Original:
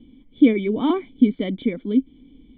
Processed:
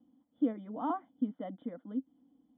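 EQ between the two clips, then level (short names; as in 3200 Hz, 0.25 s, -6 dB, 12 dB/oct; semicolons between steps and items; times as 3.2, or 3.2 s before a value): air absorption 380 m; speaker cabinet 300–2900 Hz, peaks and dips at 310 Hz +5 dB, 480 Hz +5 dB, 730 Hz +8 dB, 1400 Hz +6 dB, 2000 Hz +5 dB; fixed phaser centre 950 Hz, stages 4; -7.5 dB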